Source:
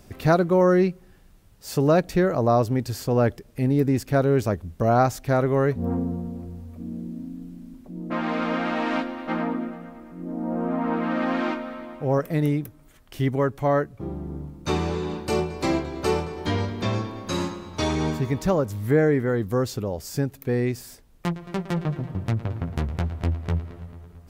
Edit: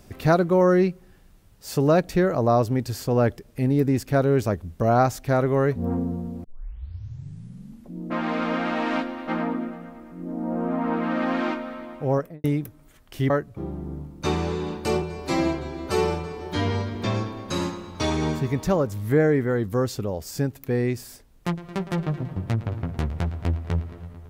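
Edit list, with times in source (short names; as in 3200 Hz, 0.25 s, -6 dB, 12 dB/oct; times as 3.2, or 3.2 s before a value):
6.44 tape start 1.50 s
12.1–12.44 studio fade out
13.3–13.73 cut
15.45–16.74 stretch 1.5×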